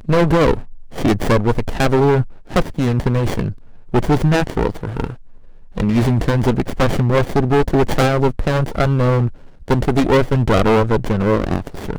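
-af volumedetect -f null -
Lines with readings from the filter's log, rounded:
mean_volume: -16.3 dB
max_volume: -9.7 dB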